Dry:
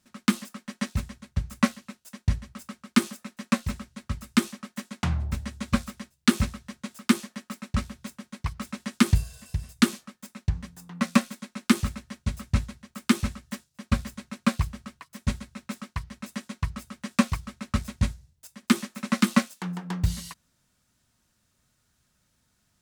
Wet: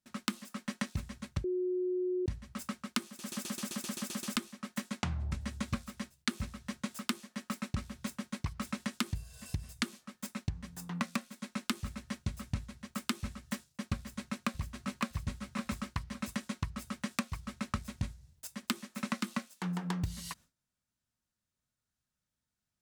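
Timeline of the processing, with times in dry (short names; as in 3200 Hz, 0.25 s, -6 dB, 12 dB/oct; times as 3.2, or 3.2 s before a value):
1.44–2.26 bleep 364 Hz -21 dBFS
3.06 stutter in place 0.13 s, 10 plays
5.01–5.41 LPF 9400 Hz
13.98–15.02 echo throw 0.56 s, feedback 20%, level -1 dB
whole clip: gate with hold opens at -57 dBFS; compressor 12:1, threshold -34 dBFS; gain +2.5 dB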